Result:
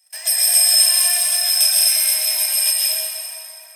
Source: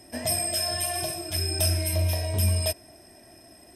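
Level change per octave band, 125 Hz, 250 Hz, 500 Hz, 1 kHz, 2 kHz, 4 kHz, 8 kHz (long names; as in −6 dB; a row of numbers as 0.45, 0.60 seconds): below −40 dB, below −35 dB, −5.5 dB, 0.0 dB, +9.5 dB, +14.0 dB, +15.5 dB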